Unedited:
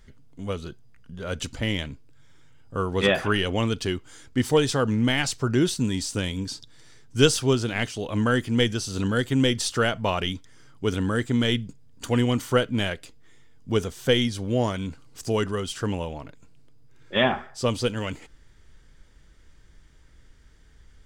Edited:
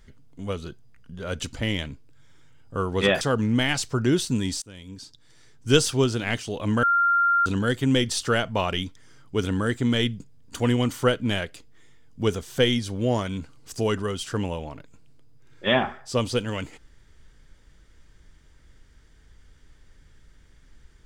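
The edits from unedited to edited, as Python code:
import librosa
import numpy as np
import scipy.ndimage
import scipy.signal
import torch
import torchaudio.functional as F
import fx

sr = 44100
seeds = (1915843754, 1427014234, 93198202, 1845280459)

y = fx.edit(x, sr, fx.cut(start_s=3.21, length_s=1.49),
    fx.fade_in_from(start_s=6.11, length_s=1.19, floor_db=-24.0),
    fx.bleep(start_s=8.32, length_s=0.63, hz=1390.0, db=-17.0), tone=tone)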